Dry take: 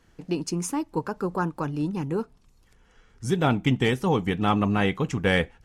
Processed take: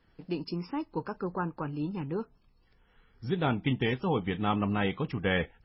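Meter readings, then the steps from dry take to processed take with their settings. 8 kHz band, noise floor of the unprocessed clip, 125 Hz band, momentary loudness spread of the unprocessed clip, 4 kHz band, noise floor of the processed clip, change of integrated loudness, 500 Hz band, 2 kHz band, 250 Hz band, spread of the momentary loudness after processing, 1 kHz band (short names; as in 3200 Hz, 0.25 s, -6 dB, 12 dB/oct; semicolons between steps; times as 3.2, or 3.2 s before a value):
under -40 dB, -60 dBFS, -6.0 dB, 8 LU, -6.0 dB, -66 dBFS, -6.0 dB, -6.0 dB, -6.0 dB, -6.0 dB, 8 LU, -6.0 dB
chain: gain -5.5 dB; MP3 16 kbps 16000 Hz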